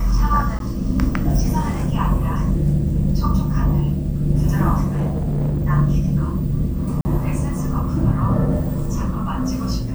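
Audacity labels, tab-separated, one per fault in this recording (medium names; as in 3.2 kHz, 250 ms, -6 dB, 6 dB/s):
0.590000	0.600000	dropout 12 ms
4.910000	5.660000	clipped -16.5 dBFS
7.010000	7.050000	dropout 40 ms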